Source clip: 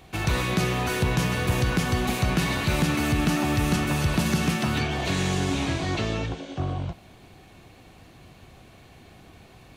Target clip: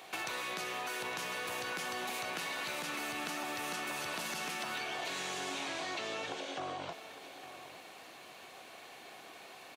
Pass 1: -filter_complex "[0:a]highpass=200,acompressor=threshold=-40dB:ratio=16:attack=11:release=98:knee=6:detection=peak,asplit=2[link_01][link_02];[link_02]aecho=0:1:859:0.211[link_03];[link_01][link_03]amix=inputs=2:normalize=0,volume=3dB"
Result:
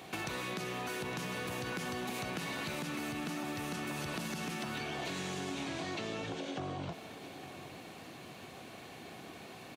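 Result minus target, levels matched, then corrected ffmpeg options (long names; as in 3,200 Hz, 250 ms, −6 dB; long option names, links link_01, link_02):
250 Hz band +9.0 dB
-filter_complex "[0:a]highpass=540,acompressor=threshold=-40dB:ratio=16:attack=11:release=98:knee=6:detection=peak,asplit=2[link_01][link_02];[link_02]aecho=0:1:859:0.211[link_03];[link_01][link_03]amix=inputs=2:normalize=0,volume=3dB"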